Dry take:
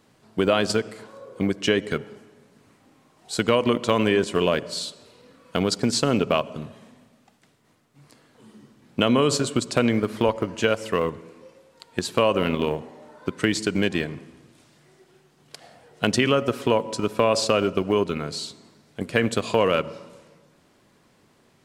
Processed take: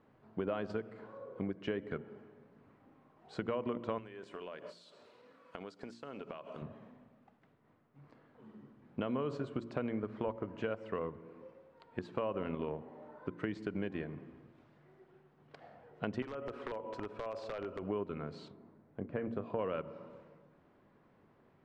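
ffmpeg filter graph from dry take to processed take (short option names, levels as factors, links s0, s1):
-filter_complex "[0:a]asettb=1/sr,asplit=3[s0][s1][s2];[s0]atrim=end=3.984[s3];[s1]atrim=start=3.98:end=6.62,asetpts=PTS-STARTPTS,afade=t=in:d=0.004:c=qsin,afade=t=out:st=2.636:d=0.004:c=qsin,aemphasis=mode=production:type=riaa,acompressor=threshold=0.0251:ratio=12:attack=3.2:release=140:knee=1:detection=peak[s4];[s2]atrim=start=6.616[s5];[s3][s4]acrossfade=d=0.004:c1=hsin:c2=qsin[s6];[s6][s5]acrossfade=d=0.004:c1=qsin:c2=hsin,asettb=1/sr,asplit=3[s7][s8][s9];[s7]atrim=end=16.224[s10];[s8]atrim=start=16.22:end=17.83,asetpts=PTS-STARTPTS,afade=t=in:d=0.004:c=qsin,afade=t=out:st=1.606:d=0.004:c=qsin,equalizer=f=170:w=1.2:g=-9.5,acompressor=threshold=0.0562:ratio=6:attack=3.2:release=140:knee=1:detection=peak,aeval=exprs='(mod(10*val(0)+1,2)-1)/10':c=same[s11];[s9]atrim=start=17.826[s12];[s10][s11]acrossfade=d=0.004:c1=hsin:c2=qsin[s13];[s13][s12]acrossfade=d=0.004:c1=qsin:c2=hsin,asettb=1/sr,asplit=3[s14][s15][s16];[s14]atrim=end=18.484[s17];[s15]atrim=start=18.48:end=19.59,asetpts=PTS-STARTPTS,afade=t=in:d=0.004:c=qsin,afade=t=out:st=1.106:d=0.004:c=qsin,lowpass=f=1000:p=1,asplit=2[s18][s19];[s19]adelay=30,volume=0.251[s20];[s18][s20]amix=inputs=2:normalize=0,atrim=end_sample=48951[s21];[s16]atrim=start=19.586[s22];[s17][s21]acrossfade=d=0.004:c1=hsin:c2=qsin[s23];[s23][s22]acrossfade=d=0.004:c1=qsin:c2=hsin,lowpass=1600,bandreject=f=58.05:t=h:w=4,bandreject=f=116.1:t=h:w=4,bandreject=f=174.15:t=h:w=4,bandreject=f=232.2:t=h:w=4,bandreject=f=290.25:t=h:w=4,bandreject=f=348.3:t=h:w=4,acompressor=threshold=0.0178:ratio=2,volume=0.531"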